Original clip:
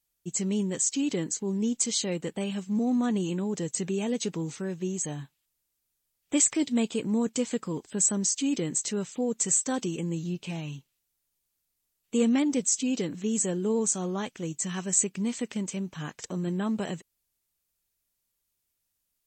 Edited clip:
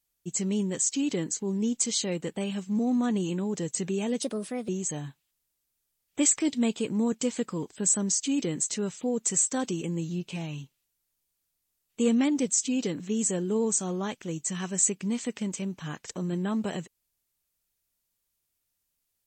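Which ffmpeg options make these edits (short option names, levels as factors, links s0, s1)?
-filter_complex "[0:a]asplit=3[s0][s1][s2];[s0]atrim=end=4.224[s3];[s1]atrim=start=4.22:end=4.83,asetpts=PTS-STARTPTS,asetrate=57771,aresample=44100,atrim=end_sample=20535,asetpts=PTS-STARTPTS[s4];[s2]atrim=start=4.826[s5];[s3][s4]acrossfade=d=0.004:c1=hsin:c2=hsin[s6];[s6][s5]acrossfade=d=0.004:c1=hsin:c2=hsin"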